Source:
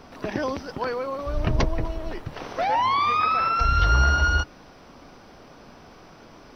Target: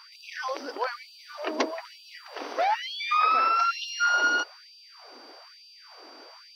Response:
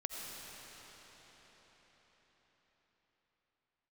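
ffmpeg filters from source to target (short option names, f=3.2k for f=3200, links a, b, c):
-af "aeval=exprs='val(0)+0.00316*sin(2*PI*4700*n/s)':c=same,bandreject=f=113.3:t=h:w=4,bandreject=f=226.6:t=h:w=4,bandreject=f=339.9:t=h:w=4,bandreject=f=453.2:t=h:w=4,bandreject=f=566.5:t=h:w=4,afftfilt=real='re*gte(b*sr/1024,220*pow(2500/220,0.5+0.5*sin(2*PI*1.1*pts/sr)))':imag='im*gte(b*sr/1024,220*pow(2500/220,0.5+0.5*sin(2*PI*1.1*pts/sr)))':win_size=1024:overlap=0.75"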